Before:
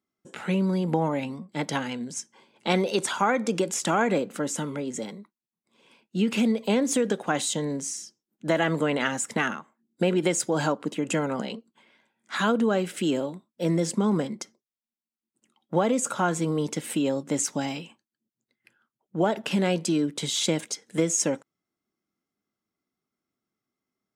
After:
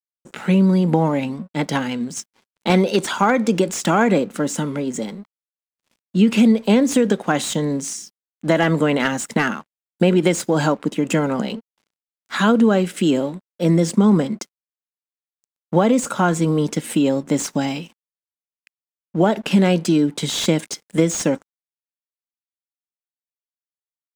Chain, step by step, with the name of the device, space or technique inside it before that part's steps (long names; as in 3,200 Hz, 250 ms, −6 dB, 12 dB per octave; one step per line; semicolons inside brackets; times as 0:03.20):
early transistor amplifier (dead-zone distortion −53 dBFS; slew-rate limiting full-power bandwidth 220 Hz)
parametric band 200 Hz +4.5 dB 1.2 octaves
level +6 dB